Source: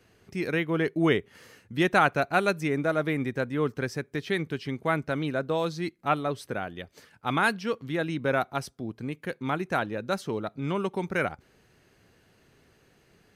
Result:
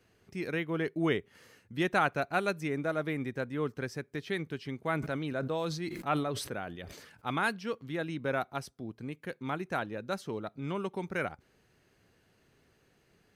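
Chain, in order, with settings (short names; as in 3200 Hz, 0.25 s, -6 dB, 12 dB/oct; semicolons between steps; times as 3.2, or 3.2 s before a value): 4.85–7.31 sustainer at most 49 dB/s; gain -6 dB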